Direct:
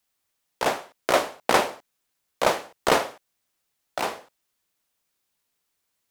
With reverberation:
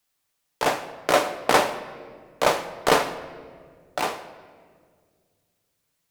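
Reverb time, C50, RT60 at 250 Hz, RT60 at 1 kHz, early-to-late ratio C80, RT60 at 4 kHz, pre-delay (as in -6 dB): 1.9 s, 12.0 dB, 2.7 s, 1.6 s, 13.5 dB, 1.2 s, 7 ms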